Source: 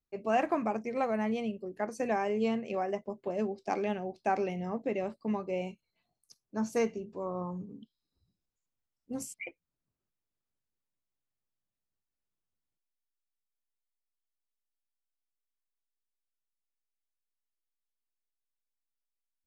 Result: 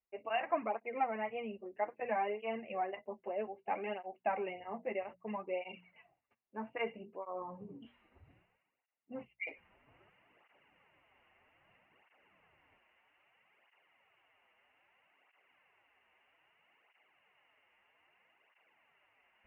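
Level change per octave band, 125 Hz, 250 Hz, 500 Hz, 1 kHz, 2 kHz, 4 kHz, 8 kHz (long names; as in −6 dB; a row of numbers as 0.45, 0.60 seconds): −15.0 dB, −13.0 dB, −6.0 dB, −3.0 dB, −2.0 dB, −2.5 dB, below −25 dB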